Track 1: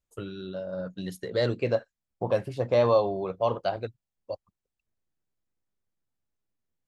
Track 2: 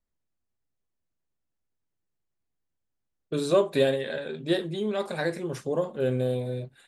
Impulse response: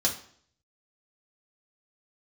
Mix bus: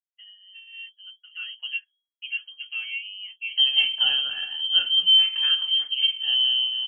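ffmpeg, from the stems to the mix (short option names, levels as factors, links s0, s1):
-filter_complex "[0:a]lowpass=f=1700:w=0.5412,lowpass=f=1700:w=1.3066,aecho=1:1:5.5:0.85,flanger=delay=6.3:depth=3.4:regen=28:speed=0.77:shape=sinusoidal,volume=0.531[s0];[1:a]lowshelf=f=270:t=q:w=3:g=12,adelay=250,volume=0.668,asplit=2[s1][s2];[s2]volume=0.266[s3];[2:a]atrim=start_sample=2205[s4];[s3][s4]afir=irnorm=-1:irlink=0[s5];[s0][s1][s5]amix=inputs=3:normalize=0,agate=range=0.0224:threshold=0.01:ratio=3:detection=peak,equalizer=f=1100:t=o:w=1.8:g=-5.5,lowpass=f=2800:t=q:w=0.5098,lowpass=f=2800:t=q:w=0.6013,lowpass=f=2800:t=q:w=0.9,lowpass=f=2800:t=q:w=2.563,afreqshift=-3300"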